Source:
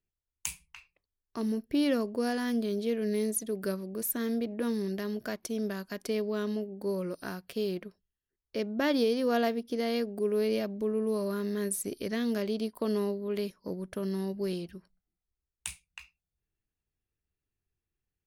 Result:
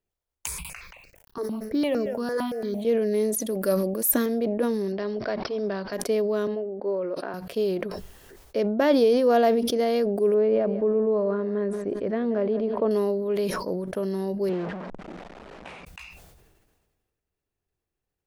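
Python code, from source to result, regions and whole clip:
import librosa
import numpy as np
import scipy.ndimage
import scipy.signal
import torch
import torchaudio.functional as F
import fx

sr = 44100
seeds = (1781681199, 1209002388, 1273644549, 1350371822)

y = fx.chain(x, sr, fx.quant_companded(bits=8),
    fx.echo_single(ms=176, db=-15.0),
    fx.phaser_held(hz=8.8, low_hz=760.0, high_hz=3400.0), at=(0.47, 2.85))
y = fx.chain(y, sr, fx.high_shelf(hz=7900.0, db=11.5),
    fx.comb(ms=3.6, depth=0.41), at=(3.4, 4.26))
y = fx.chain(y, sr, fx.resample_bad(factor=4, down='none', up='filtered'),
    fx.notch(hz=230.0, q=7.5), at=(4.92, 5.93))
y = fx.chain(y, sr, fx.highpass(hz=310.0, slope=12),
    fx.air_absorb(metres=370.0), at=(6.47, 7.34))
y = fx.chain(y, sr, fx.lowpass(hz=1700.0, slope=12),
    fx.echo_feedback(ms=181, feedback_pct=34, wet_db=-17.0), at=(10.34, 12.91))
y = fx.chain(y, sr, fx.delta_mod(bps=64000, step_db=-34.5),
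    fx.lowpass(hz=2100.0, slope=12),
    fx.low_shelf_res(hz=130.0, db=-11.0, q=1.5), at=(14.49, 15.85))
y = fx.peak_eq(y, sr, hz=610.0, db=10.0, octaves=1.8)
y = fx.sustainer(y, sr, db_per_s=36.0)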